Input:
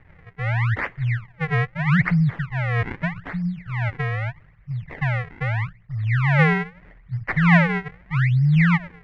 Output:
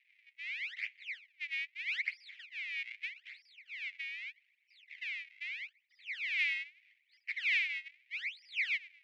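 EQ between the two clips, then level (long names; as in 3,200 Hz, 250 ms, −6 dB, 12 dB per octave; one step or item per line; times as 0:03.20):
Chebyshev high-pass filter 2,300 Hz, order 5
high-frequency loss of the air 79 metres
0.0 dB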